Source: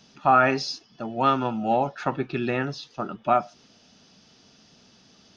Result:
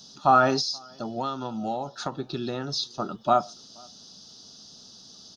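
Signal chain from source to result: FFT filter 1.3 kHz 0 dB, 2.3 kHz -15 dB, 3.8 kHz +11 dB; 0.59–2.72 s: compression 6:1, threshold -27 dBFS, peak gain reduction 11.5 dB; echo from a far wall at 82 m, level -29 dB

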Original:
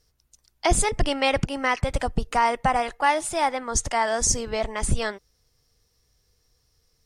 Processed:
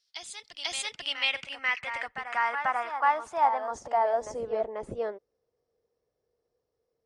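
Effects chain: reverse echo 490 ms -7.5 dB; band-pass sweep 3.8 kHz -> 500 Hz, 0.77–4.66 s; trim +1.5 dB

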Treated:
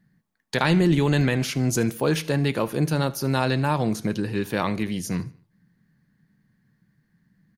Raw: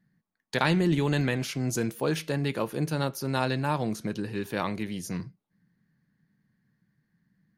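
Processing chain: bass shelf 71 Hz +5.5 dB; in parallel at -1 dB: peak limiter -18 dBFS, peak gain reduction 9 dB; on the sum: feedback delay 75 ms, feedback 48%, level -22 dB

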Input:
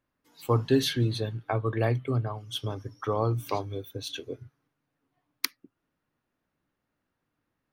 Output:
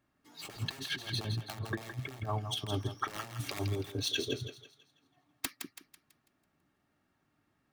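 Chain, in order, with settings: median filter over 3 samples; integer overflow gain 20.5 dB; compressor with a negative ratio -35 dBFS, ratio -0.5; comb of notches 500 Hz; on a send: thinning echo 165 ms, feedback 41%, high-pass 680 Hz, level -7 dB

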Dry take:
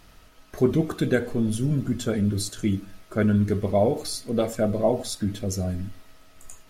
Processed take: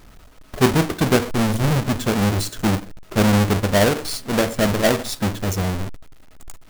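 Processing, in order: square wave that keeps the level; trim +1 dB

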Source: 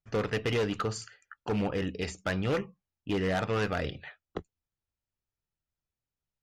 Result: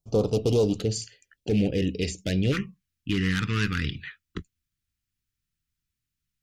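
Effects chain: Butterworth band-stop 1.8 kHz, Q 0.51, from 0.79 s 1.1 kHz, from 2.51 s 660 Hz; trim +7.5 dB

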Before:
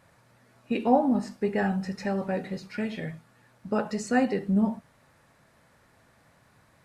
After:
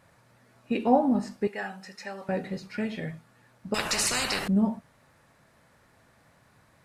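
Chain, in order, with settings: 1.47–2.29 s: high-pass 1.4 kHz 6 dB/octave; 3.74–4.48 s: spectrum-flattening compressor 10:1

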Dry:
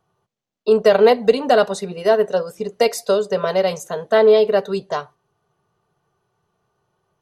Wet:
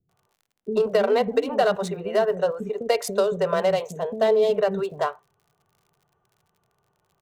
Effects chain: local Wiener filter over 9 samples; 3.66–4.40 s: peaking EQ 1.4 kHz -8 dB -> -14.5 dB 0.67 oct; compression, threshold -15 dBFS, peak gain reduction 8.5 dB; crackle 64 per s -49 dBFS; bands offset in time lows, highs 90 ms, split 330 Hz

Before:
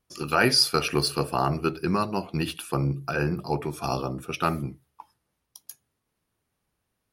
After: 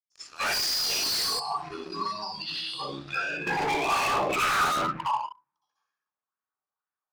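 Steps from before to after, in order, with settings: band-pass sweep 7.1 kHz -> 1.2 kHz, 1.89–5.05 s; reverberation RT60 1.0 s, pre-delay 58 ms, DRR -9.5 dB; spectral noise reduction 19 dB; peak limiter -19.5 dBFS, peak gain reduction 11 dB; waveshaping leveller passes 3; 1.39–3.47 s: compression 6:1, threshold -37 dBFS, peak gain reduction 12.5 dB; distance through air 92 m; hard clipper -32.5 dBFS, distortion -7 dB; sweeping bell 2.1 Hz 590–2000 Hz +7 dB; trim +6 dB

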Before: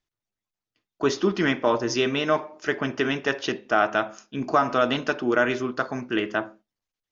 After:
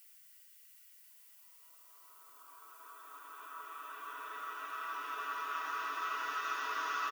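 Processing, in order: comb 6.2 ms, depth 72%; compression 6:1, threshold -19 dBFS, peak gain reduction 6.5 dB; peak limiter -17 dBFS, peak gain reduction 9 dB; level held to a coarse grid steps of 14 dB; LFO high-pass saw down 0.44 Hz 860–1900 Hz; Paulstretch 28×, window 0.50 s, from 0.75 s; added noise violet -60 dBFS

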